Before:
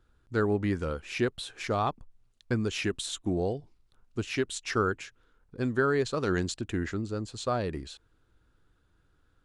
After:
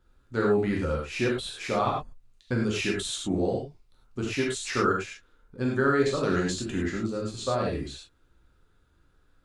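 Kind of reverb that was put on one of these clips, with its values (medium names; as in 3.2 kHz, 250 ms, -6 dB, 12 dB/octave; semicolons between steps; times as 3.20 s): gated-style reverb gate 130 ms flat, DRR -3 dB; trim -1.5 dB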